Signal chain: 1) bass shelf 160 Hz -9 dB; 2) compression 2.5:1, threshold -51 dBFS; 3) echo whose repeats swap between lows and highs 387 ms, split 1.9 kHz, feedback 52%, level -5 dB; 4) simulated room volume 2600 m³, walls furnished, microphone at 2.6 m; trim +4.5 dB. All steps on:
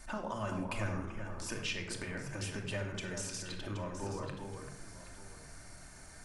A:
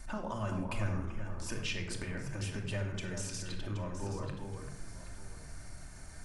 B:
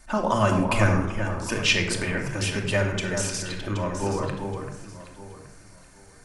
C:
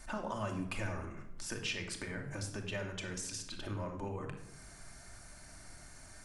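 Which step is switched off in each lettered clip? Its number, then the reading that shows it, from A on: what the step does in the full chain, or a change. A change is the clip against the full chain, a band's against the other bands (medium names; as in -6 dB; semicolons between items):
1, 125 Hz band +4.5 dB; 2, mean gain reduction 9.0 dB; 3, echo-to-direct 0.5 dB to -1.5 dB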